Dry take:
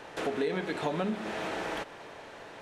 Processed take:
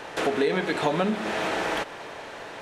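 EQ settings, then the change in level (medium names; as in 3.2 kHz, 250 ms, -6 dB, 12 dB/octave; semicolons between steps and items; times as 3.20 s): bass shelf 430 Hz -3.5 dB; +8.5 dB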